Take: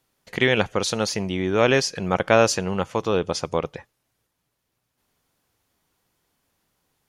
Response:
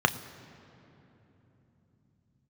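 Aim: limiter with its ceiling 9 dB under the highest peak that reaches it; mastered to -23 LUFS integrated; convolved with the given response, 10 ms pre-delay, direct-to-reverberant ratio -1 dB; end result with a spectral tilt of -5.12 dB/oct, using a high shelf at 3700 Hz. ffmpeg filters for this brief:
-filter_complex "[0:a]highshelf=f=3.7k:g=-6.5,alimiter=limit=-13.5dB:level=0:latency=1,asplit=2[a][b];[1:a]atrim=start_sample=2205,adelay=10[c];[b][c]afir=irnorm=-1:irlink=0,volume=-13dB[d];[a][d]amix=inputs=2:normalize=0,volume=1dB"

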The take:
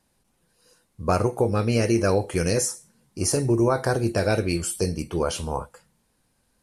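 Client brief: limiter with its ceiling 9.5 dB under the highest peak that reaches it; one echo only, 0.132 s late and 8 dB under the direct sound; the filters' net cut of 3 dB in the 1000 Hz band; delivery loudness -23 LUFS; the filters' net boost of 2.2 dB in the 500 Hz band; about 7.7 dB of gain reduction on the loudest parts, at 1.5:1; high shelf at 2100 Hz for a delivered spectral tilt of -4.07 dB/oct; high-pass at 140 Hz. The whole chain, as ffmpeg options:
-af "highpass=140,equalizer=f=500:t=o:g=4,equalizer=f=1k:t=o:g=-7.5,highshelf=f=2.1k:g=6,acompressor=threshold=-37dB:ratio=1.5,alimiter=limit=-22.5dB:level=0:latency=1,aecho=1:1:132:0.398,volume=10dB"

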